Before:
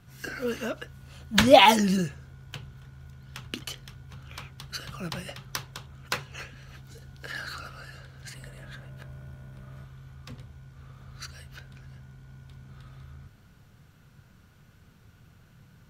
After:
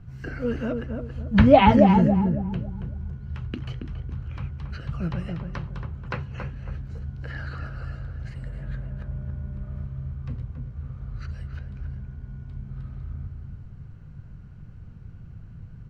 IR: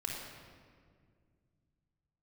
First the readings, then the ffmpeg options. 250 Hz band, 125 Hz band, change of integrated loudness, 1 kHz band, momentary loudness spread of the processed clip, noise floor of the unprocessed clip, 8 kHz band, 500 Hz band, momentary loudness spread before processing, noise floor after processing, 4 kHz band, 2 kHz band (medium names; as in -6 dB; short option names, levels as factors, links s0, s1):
+8.0 dB, +11.0 dB, -1.0 dB, +0.5 dB, 24 LU, -57 dBFS, under -20 dB, +2.5 dB, 25 LU, -43 dBFS, -10.5 dB, -4.0 dB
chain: -filter_complex "[0:a]aemphasis=mode=reproduction:type=riaa,acrossover=split=3900[s0][s1];[s1]acompressor=threshold=0.001:ratio=4:attack=1:release=60[s2];[s0][s2]amix=inputs=2:normalize=0,equalizer=f=11000:w=6.4:g=-7.5,bandreject=f=3500:w=8.6,asplit=2[s3][s4];[s4]adelay=277,lowpass=f=1100:p=1,volume=0.631,asplit=2[s5][s6];[s6]adelay=277,lowpass=f=1100:p=1,volume=0.38,asplit=2[s7][s8];[s8]adelay=277,lowpass=f=1100:p=1,volume=0.38,asplit=2[s9][s10];[s10]adelay=277,lowpass=f=1100:p=1,volume=0.38,asplit=2[s11][s12];[s12]adelay=277,lowpass=f=1100:p=1,volume=0.38[s13];[s3][s5][s7][s9][s11][s13]amix=inputs=6:normalize=0,volume=0.891"